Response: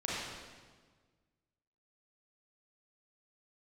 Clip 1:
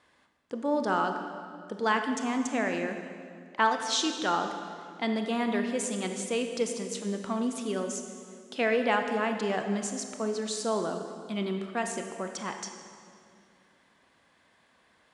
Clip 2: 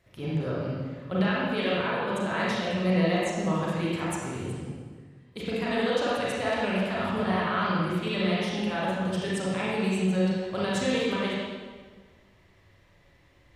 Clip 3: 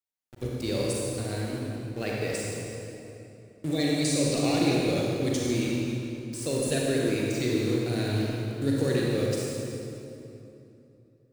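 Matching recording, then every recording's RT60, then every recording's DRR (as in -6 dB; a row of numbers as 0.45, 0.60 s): 2; 2.2, 1.5, 2.9 s; 5.0, -7.5, -4.0 dB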